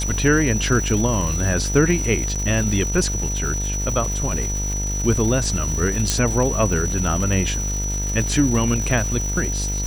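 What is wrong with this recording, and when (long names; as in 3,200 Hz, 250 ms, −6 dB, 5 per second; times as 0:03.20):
mains buzz 50 Hz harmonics 20 −25 dBFS
surface crackle 560 per second −27 dBFS
whistle 5,900 Hz −26 dBFS
0:02.35–0:02.36: drop-out 6.6 ms
0:06.10: click −3 dBFS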